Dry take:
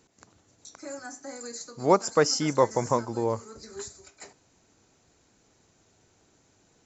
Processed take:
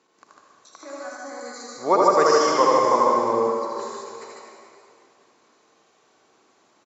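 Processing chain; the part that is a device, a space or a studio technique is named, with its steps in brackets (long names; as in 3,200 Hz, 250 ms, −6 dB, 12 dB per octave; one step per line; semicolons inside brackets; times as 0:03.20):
station announcement (band-pass filter 320–4,900 Hz; parametric band 1,100 Hz +10 dB 0.21 octaves; loudspeakers that aren't time-aligned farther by 27 metres −3 dB, 51 metres −3 dB; convolution reverb RT60 2.5 s, pre-delay 56 ms, DRR 0 dB)
0:01.16–0:02.17: notch filter 2,700 Hz, Q 6.8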